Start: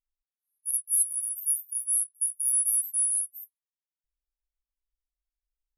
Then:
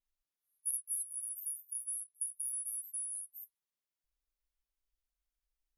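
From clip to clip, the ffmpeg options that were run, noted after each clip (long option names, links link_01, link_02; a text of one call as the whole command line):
ffmpeg -i in.wav -af "bandreject=frequency=7800:width=18,acompressor=threshold=-32dB:ratio=6,adynamicequalizer=threshold=0.00316:dfrequency=7800:dqfactor=0.7:tfrequency=7800:tqfactor=0.7:attack=5:release=100:ratio=0.375:range=4:mode=cutabove:tftype=highshelf" out.wav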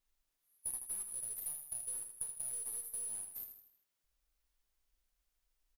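ffmpeg -i in.wav -filter_complex "[0:a]acompressor=threshold=-50dB:ratio=3,asplit=2[link_01][link_02];[link_02]acrusher=bits=5:dc=4:mix=0:aa=0.000001,volume=-11.5dB[link_03];[link_01][link_03]amix=inputs=2:normalize=0,aecho=1:1:79|158|237|316|395:0.422|0.194|0.0892|0.041|0.0189,volume=6.5dB" out.wav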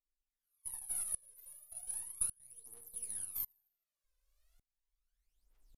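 ffmpeg -i in.wav -af "aphaser=in_gain=1:out_gain=1:delay=2:decay=0.74:speed=0.36:type=triangular,aresample=32000,aresample=44100,aeval=exprs='val(0)*pow(10,-29*if(lt(mod(-0.87*n/s,1),2*abs(-0.87)/1000),1-mod(-0.87*n/s,1)/(2*abs(-0.87)/1000),(mod(-0.87*n/s,1)-2*abs(-0.87)/1000)/(1-2*abs(-0.87)/1000))/20)':channel_layout=same,volume=4.5dB" out.wav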